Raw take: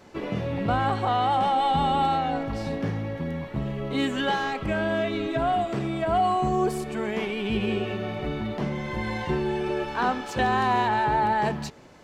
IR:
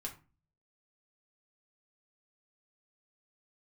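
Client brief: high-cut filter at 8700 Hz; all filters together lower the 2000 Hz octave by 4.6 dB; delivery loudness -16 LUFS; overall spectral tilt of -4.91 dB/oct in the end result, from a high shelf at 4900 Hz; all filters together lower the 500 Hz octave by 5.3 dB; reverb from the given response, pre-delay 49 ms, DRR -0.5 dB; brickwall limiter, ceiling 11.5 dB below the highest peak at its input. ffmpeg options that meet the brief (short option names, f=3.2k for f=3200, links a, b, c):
-filter_complex "[0:a]lowpass=8.7k,equalizer=f=500:t=o:g=-7.5,equalizer=f=2k:t=o:g=-6.5,highshelf=f=4.9k:g=7,alimiter=level_in=2dB:limit=-24dB:level=0:latency=1,volume=-2dB,asplit=2[a][b];[1:a]atrim=start_sample=2205,adelay=49[c];[b][c]afir=irnorm=-1:irlink=0,volume=2dB[d];[a][d]amix=inputs=2:normalize=0,volume=15dB"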